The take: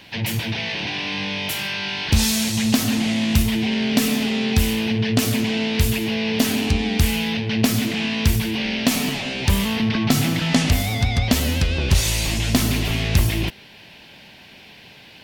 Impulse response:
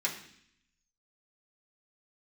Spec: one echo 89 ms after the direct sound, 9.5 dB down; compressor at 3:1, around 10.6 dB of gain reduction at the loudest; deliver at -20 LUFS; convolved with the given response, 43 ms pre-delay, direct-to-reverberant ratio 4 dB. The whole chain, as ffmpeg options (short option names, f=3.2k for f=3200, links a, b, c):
-filter_complex "[0:a]acompressor=threshold=-27dB:ratio=3,aecho=1:1:89:0.335,asplit=2[a][b];[1:a]atrim=start_sample=2205,adelay=43[c];[b][c]afir=irnorm=-1:irlink=0,volume=-10dB[d];[a][d]amix=inputs=2:normalize=0,volume=6.5dB"